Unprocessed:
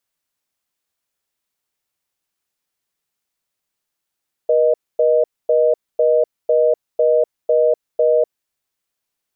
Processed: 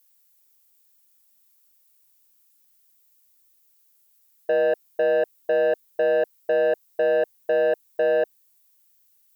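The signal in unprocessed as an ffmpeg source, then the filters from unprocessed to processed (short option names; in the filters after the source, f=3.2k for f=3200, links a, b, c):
-f lavfi -i "aevalsrc='0.2*(sin(2*PI*480*t)+sin(2*PI*620*t))*clip(min(mod(t,0.5),0.25-mod(t,0.5))/0.005,0,1)':d=3.91:s=44100"
-af "aemphasis=mode=production:type=75fm,asoftclip=type=tanh:threshold=-16.5dB"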